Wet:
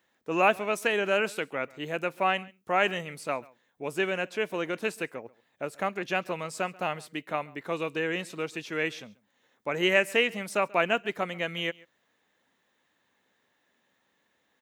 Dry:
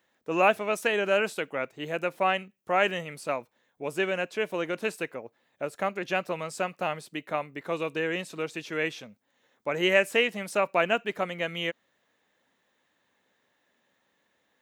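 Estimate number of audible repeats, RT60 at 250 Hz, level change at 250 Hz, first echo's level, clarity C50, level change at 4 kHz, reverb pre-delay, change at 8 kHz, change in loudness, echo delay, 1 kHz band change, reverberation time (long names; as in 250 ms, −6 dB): 1, no reverb audible, 0.0 dB, −23.5 dB, no reverb audible, 0.0 dB, no reverb audible, 0.0 dB, −0.5 dB, 137 ms, −0.5 dB, no reverb audible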